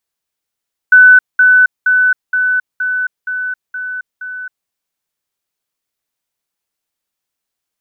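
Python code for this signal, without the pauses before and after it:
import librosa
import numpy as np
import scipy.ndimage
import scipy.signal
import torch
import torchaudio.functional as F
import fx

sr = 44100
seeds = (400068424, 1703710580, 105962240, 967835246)

y = fx.level_ladder(sr, hz=1500.0, from_db=-1.5, step_db=-3.0, steps=8, dwell_s=0.27, gap_s=0.2)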